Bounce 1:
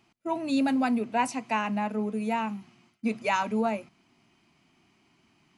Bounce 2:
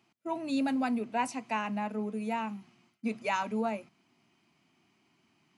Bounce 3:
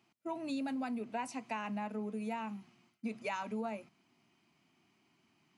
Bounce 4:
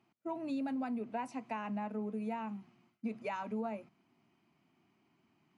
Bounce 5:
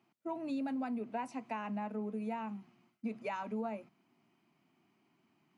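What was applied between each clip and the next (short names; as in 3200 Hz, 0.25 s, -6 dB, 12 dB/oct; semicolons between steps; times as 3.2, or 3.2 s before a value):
HPF 100 Hz; gain -4.5 dB
compressor, threshold -32 dBFS, peak gain reduction 7 dB; gain -2.5 dB
high shelf 2600 Hz -12 dB; gain +1 dB
HPF 120 Hz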